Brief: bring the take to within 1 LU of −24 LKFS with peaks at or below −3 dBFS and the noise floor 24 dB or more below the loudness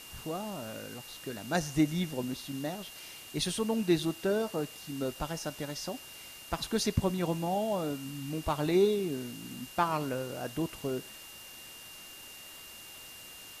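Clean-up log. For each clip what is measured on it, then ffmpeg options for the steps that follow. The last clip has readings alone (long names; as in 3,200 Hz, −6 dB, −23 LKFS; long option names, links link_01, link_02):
interfering tone 2,800 Hz; level of the tone −50 dBFS; background noise floor −49 dBFS; target noise floor −57 dBFS; integrated loudness −33.0 LKFS; sample peak −13.0 dBFS; target loudness −24.0 LKFS
→ -af "bandreject=frequency=2800:width=30"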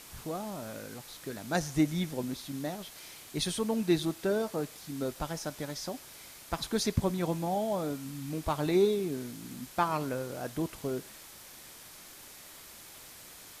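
interfering tone none found; background noise floor −51 dBFS; target noise floor −57 dBFS
→ -af "afftdn=noise_reduction=6:noise_floor=-51"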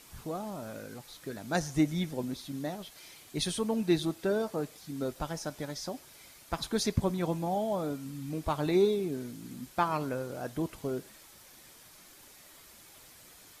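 background noise floor −55 dBFS; target noise floor −57 dBFS
→ -af "afftdn=noise_reduction=6:noise_floor=-55"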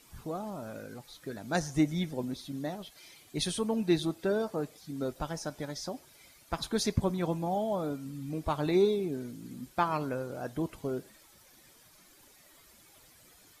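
background noise floor −60 dBFS; integrated loudness −33.0 LKFS; sample peak −13.5 dBFS; target loudness −24.0 LKFS
→ -af "volume=9dB"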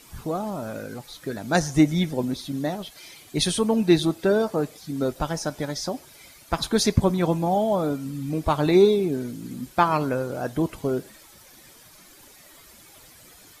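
integrated loudness −24.0 LKFS; sample peak −4.5 dBFS; background noise floor −51 dBFS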